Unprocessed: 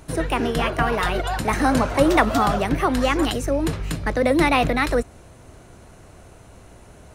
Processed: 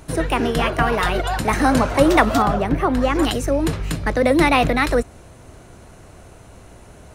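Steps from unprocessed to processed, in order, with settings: 2.42–3.15 high shelf 2200 Hz -10.5 dB; gain +2.5 dB

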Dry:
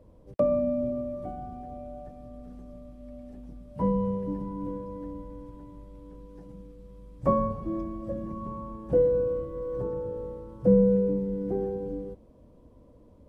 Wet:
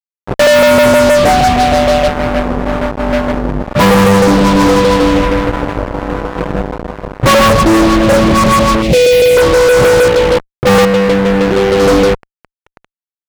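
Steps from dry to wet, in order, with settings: 10.08–11.8 level quantiser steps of 20 dB; LFO low-pass saw up 6.4 Hz 510–1800 Hz; fuzz box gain 43 dB, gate -43 dBFS; 8.82–9.37 band shelf 1200 Hz -15.5 dB 1.2 oct; gain +7.5 dB

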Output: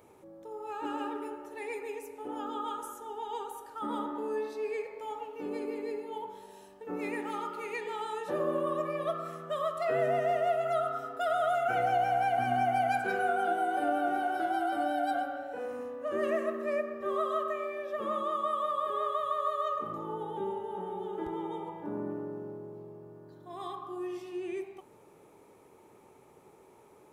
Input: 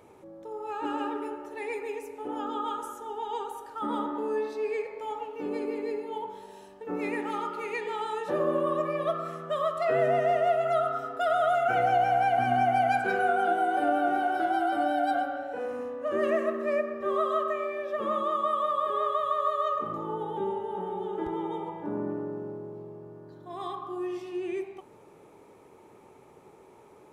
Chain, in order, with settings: high shelf 8900 Hz +9 dB; gain -4 dB

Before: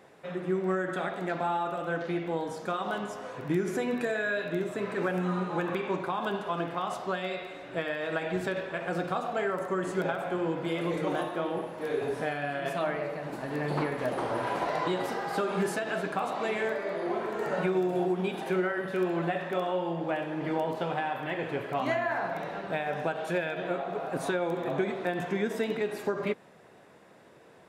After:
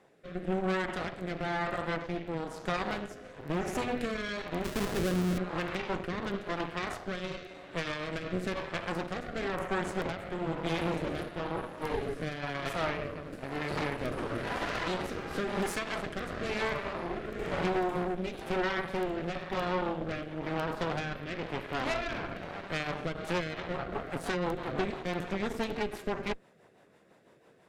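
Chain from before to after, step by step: 4.64–5.38 half-waves squared off; added harmonics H 4 -12 dB, 8 -15 dB, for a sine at -16 dBFS; rotary speaker horn 1 Hz, later 6 Hz, at 22.92; gain -4 dB

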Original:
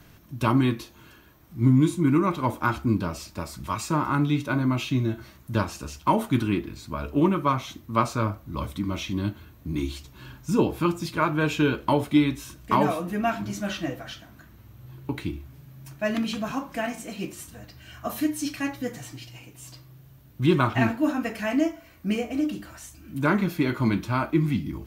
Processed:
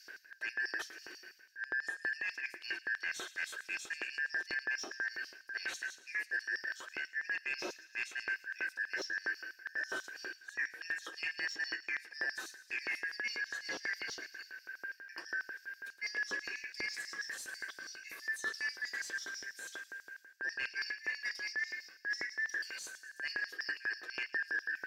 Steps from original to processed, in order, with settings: four-band scrambler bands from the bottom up 3142; bell 870 Hz -9 dB 0.33 oct; de-hum 324.6 Hz, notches 34; reverse; compressor 6:1, threshold -36 dBFS, peak gain reduction 20 dB; reverse; LFO high-pass square 6.1 Hz 360–5200 Hz; overdrive pedal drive 11 dB, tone 1600 Hz, clips at -22 dBFS; on a send: thin delay 0.112 s, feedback 63%, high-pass 3800 Hz, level -13 dB

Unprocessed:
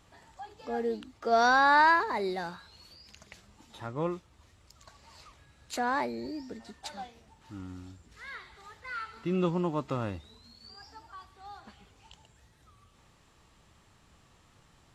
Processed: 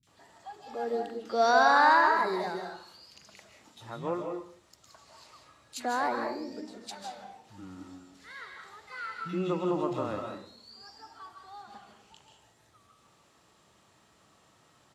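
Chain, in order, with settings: HPF 150 Hz 12 dB/oct; three bands offset in time lows, highs, mids 30/70 ms, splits 190/2300 Hz; reverb RT60 0.50 s, pre-delay 0.115 s, DRR 3 dB

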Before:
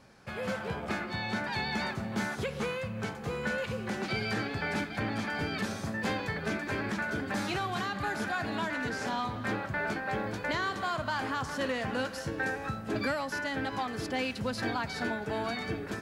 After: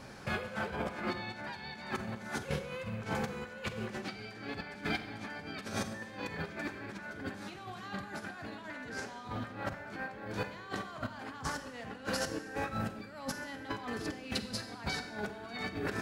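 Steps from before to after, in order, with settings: negative-ratio compressor -40 dBFS, ratio -0.5; Schroeder reverb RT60 0.99 s, combs from 31 ms, DRR 9 dB; gain +1 dB

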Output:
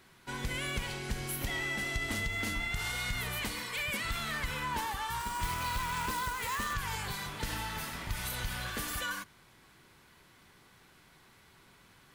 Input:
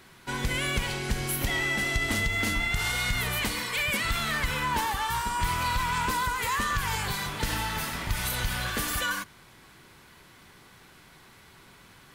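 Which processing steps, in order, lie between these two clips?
5.2–6.74 companded quantiser 4-bit; gain -7 dB

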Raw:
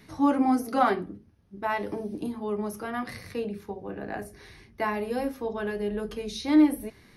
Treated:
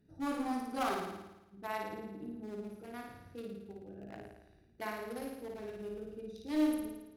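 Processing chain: Wiener smoothing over 41 samples; one-sided clip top -21 dBFS; pre-emphasis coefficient 0.8; on a send: flutter echo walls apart 9.5 m, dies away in 0.97 s; on the sum: gain +1 dB

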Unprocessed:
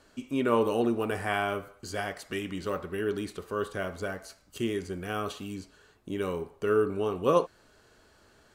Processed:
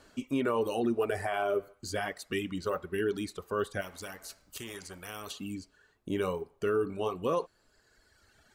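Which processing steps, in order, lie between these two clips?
reverb removal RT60 1.7 s; 0.97–1.74 small resonant body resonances 400/610 Hz, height 9 dB, ringing for 25 ms; limiter -22.5 dBFS, peak gain reduction 10.5 dB; 3.81–5.31 spectral compressor 2:1; gain +2 dB

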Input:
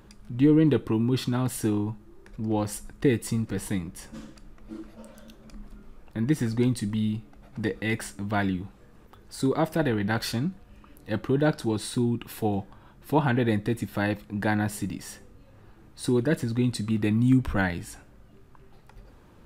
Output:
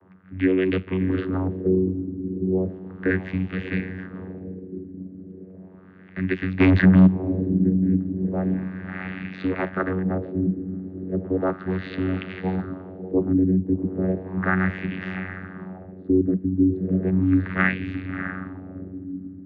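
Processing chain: band shelf 2500 Hz +13.5 dB; 6.59–7.06 sample leveller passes 5; on a send: diffused feedback echo 0.653 s, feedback 50%, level -9.5 dB; on the sum: vocoder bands 16, saw 93.3 Hz; LFO low-pass sine 0.35 Hz 280–2600 Hz

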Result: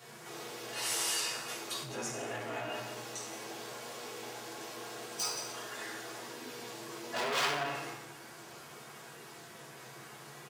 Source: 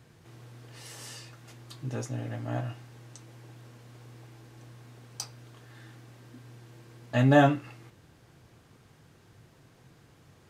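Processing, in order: bin magnitudes rounded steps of 15 dB; outdoor echo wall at 30 m, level -16 dB; wavefolder -25 dBFS; limiter -35.5 dBFS, peak gain reduction 10.5 dB; HPF 450 Hz 12 dB/oct; high shelf 6200 Hz +4 dB; reverb RT60 0.95 s, pre-delay 3 ms, DRR -8 dB; core saturation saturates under 2800 Hz; gain +5 dB

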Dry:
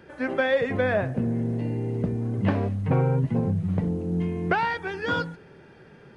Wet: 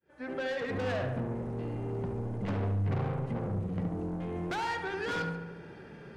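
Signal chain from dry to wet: opening faded in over 0.82 s; soft clip -29 dBFS, distortion -7 dB; compressor 2:1, threshold -35 dBFS, peak gain reduction 3 dB; darkening echo 71 ms, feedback 65%, low-pass 2500 Hz, level -5.5 dB

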